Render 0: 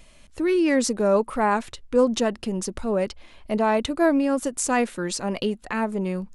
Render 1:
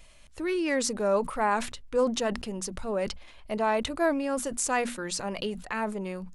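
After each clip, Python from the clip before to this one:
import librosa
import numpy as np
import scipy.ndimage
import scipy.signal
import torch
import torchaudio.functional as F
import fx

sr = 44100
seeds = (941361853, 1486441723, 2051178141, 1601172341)

y = fx.peak_eq(x, sr, hz=260.0, db=-6.5, octaves=1.6)
y = fx.hum_notches(y, sr, base_hz=60, count=4)
y = fx.sustainer(y, sr, db_per_s=98.0)
y = y * librosa.db_to_amplitude(-3.0)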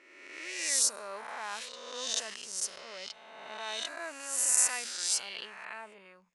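y = fx.spec_swells(x, sr, rise_s=1.65)
y = np.diff(y, prepend=0.0)
y = fx.env_lowpass(y, sr, base_hz=1600.0, full_db=-25.5)
y = y * librosa.db_to_amplitude(1.5)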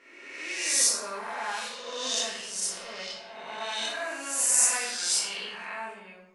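y = fx.room_shoebox(x, sr, seeds[0], volume_m3=200.0, walls='mixed', distance_m=1.7)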